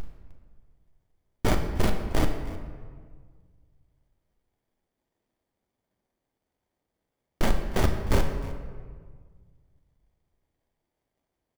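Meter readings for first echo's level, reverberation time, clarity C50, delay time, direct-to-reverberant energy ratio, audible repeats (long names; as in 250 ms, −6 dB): −19.0 dB, 1.7 s, 6.5 dB, 307 ms, 4.0 dB, 1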